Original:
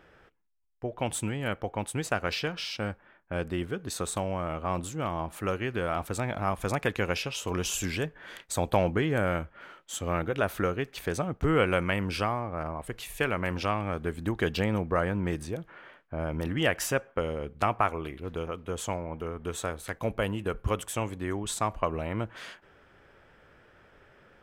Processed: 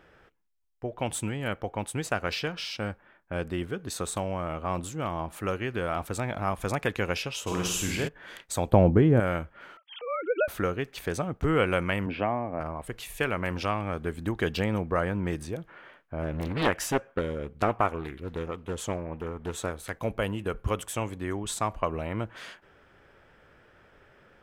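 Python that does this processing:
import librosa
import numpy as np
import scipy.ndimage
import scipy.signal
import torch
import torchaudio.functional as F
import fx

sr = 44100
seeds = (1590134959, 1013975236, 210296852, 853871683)

y = fx.room_flutter(x, sr, wall_m=8.7, rt60_s=0.74, at=(7.46, 8.07), fade=0.02)
y = fx.tilt_shelf(y, sr, db=9.5, hz=970.0, at=(8.72, 9.2))
y = fx.sine_speech(y, sr, at=(9.77, 10.48))
y = fx.cabinet(y, sr, low_hz=110.0, low_slope=12, high_hz=2700.0, hz=(260.0, 670.0, 1300.0), db=(7, 6, -8), at=(12.06, 12.6))
y = fx.doppler_dist(y, sr, depth_ms=0.66, at=(16.22, 19.71))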